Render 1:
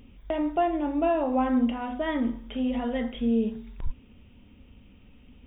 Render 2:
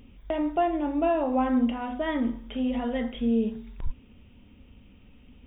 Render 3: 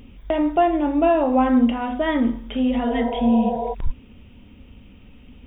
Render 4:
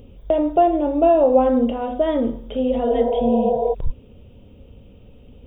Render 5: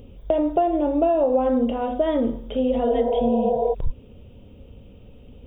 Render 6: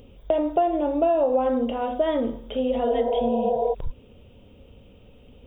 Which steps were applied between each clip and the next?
no processing that can be heard
healed spectral selection 0:02.90–0:03.71, 390–980 Hz before; level +7 dB
octave-band graphic EQ 125/250/500/1,000/2,000 Hz +5/−6/+11/−4/−11 dB
downward compressor, threshold −16 dBFS, peak gain reduction 7 dB
low-shelf EQ 440 Hz −7.5 dB; level +1.5 dB

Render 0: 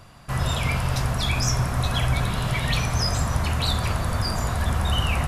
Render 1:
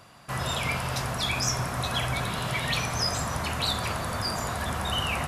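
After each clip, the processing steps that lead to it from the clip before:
high-pass filter 240 Hz 6 dB per octave
level −1 dB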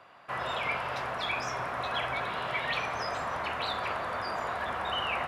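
three-way crossover with the lows and the highs turned down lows −16 dB, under 350 Hz, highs −22 dB, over 3,200 Hz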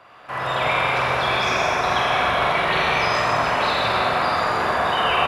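double-tracking delay 45 ms −3 dB
convolution reverb RT60 3.7 s, pre-delay 64 ms, DRR −4.5 dB
level +5 dB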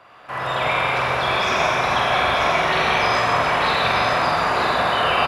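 single-tap delay 939 ms −4.5 dB

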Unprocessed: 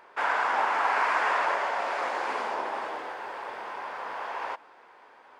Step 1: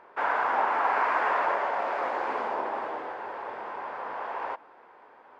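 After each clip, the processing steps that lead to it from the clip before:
low-pass filter 1,100 Hz 6 dB per octave
level +3 dB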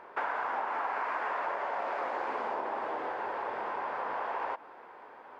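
downward compressor, threshold −34 dBFS, peak gain reduction 12.5 dB
level +3 dB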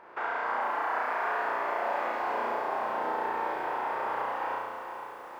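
flutter between parallel walls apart 5.9 metres, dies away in 1.4 s
feedback echo at a low word length 453 ms, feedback 55%, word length 9 bits, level −8.5 dB
level −2.5 dB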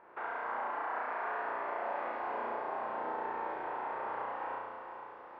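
high-frequency loss of the air 310 metres
level −5 dB

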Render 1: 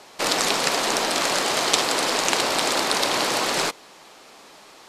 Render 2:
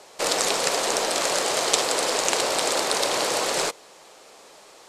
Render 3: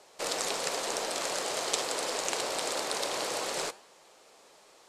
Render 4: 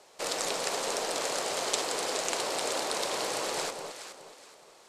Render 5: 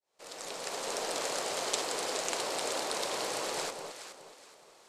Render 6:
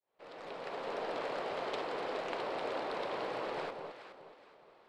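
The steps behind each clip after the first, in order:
graphic EQ with 10 bands 250 Hz −4 dB, 500 Hz +7 dB, 8,000 Hz +6 dB; level −4 dB
flanger 1.8 Hz, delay 9.4 ms, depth 5.9 ms, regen −89%; level −4.5 dB
delay that swaps between a low-pass and a high-pass 210 ms, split 1,100 Hz, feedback 55%, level −4.5 dB
fade in at the beginning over 1.07 s; level −2.5 dB
high-frequency loss of the air 410 metres

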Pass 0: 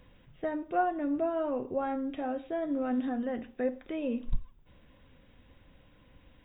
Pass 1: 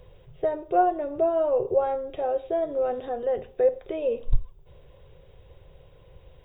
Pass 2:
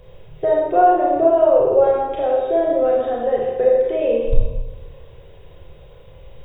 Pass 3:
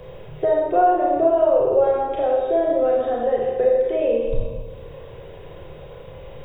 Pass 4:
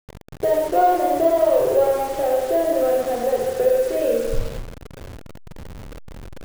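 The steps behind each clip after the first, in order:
drawn EQ curve 150 Hz 0 dB, 260 Hz −24 dB, 390 Hz +6 dB, 1,700 Hz −11 dB, 4,300 Hz −4 dB; level +8.5 dB
four-comb reverb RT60 1.2 s, combs from 27 ms, DRR −3.5 dB; level +4 dB
multiband upward and downward compressor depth 40%; level −2 dB
hold until the input has moved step −29.5 dBFS

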